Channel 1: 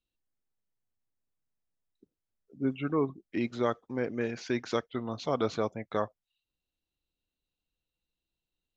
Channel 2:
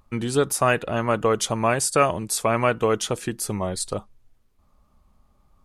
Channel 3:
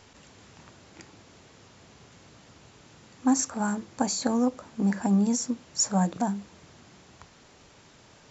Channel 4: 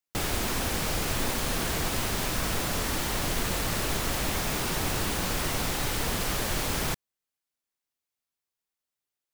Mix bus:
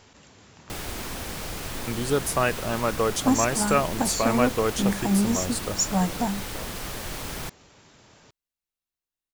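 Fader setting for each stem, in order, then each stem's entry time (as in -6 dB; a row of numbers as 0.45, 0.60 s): -13.0, -3.5, +0.5, -5.0 dB; 0.60, 1.75, 0.00, 0.55 s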